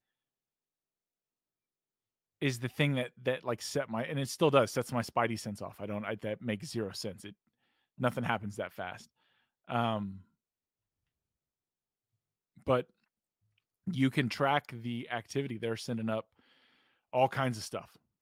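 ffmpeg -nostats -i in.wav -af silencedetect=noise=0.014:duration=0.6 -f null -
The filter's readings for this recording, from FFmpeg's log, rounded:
silence_start: 0.00
silence_end: 2.42 | silence_duration: 2.42
silence_start: 7.29
silence_end: 8.00 | silence_duration: 0.71
silence_start: 8.95
silence_end: 9.70 | silence_duration: 0.75
silence_start: 10.11
silence_end: 12.67 | silence_duration: 2.56
silence_start: 12.81
silence_end: 13.87 | silence_duration: 1.06
silence_start: 16.20
silence_end: 17.14 | silence_duration: 0.93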